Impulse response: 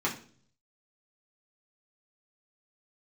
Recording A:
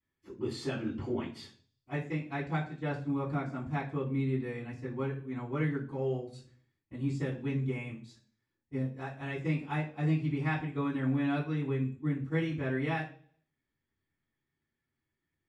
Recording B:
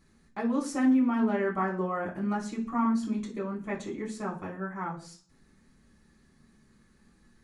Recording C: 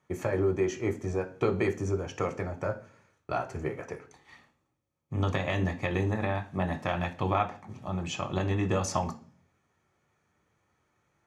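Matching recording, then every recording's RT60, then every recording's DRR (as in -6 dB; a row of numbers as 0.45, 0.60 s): B; 0.45, 0.45, 0.45 s; -14.5, -4.5, 4.0 dB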